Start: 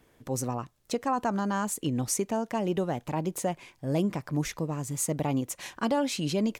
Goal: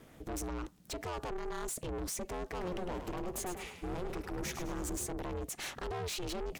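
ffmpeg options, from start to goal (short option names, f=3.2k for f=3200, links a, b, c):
-filter_complex "[0:a]lowshelf=f=130:g=5.5,alimiter=level_in=2.5dB:limit=-24dB:level=0:latency=1:release=68,volume=-2.5dB,asoftclip=type=tanh:threshold=-40dB,aeval=exprs='val(0)*sin(2*PI*180*n/s)':c=same,asettb=1/sr,asplit=3[a][b][c];[a]atrim=end=2.404[d];[b]atrim=start=2.4:end=5.07,asetpts=PTS-STARTPTS,afade=t=in:d=0.004:c=qsin,afade=t=out:st=2.666:d=0.004:c=qsin,asplit=6[e][f][g][h][i][j];[f]adelay=104,afreqshift=35,volume=-8dB[k];[g]adelay=208,afreqshift=70,volume=-15.7dB[l];[h]adelay=312,afreqshift=105,volume=-23.5dB[m];[i]adelay=416,afreqshift=140,volume=-31.2dB[n];[j]adelay=520,afreqshift=175,volume=-39dB[o];[e][k][l][m][n][o]amix=inputs=6:normalize=0,atrim=end_sample=117747[p];[c]atrim=start=5.066[q];[d][p]acrossfade=d=0.004:c1=hsin:c2=qsin[r];[r][q]acrossfade=d=0.004:c1=qsin:c2=hsin,volume=7dB"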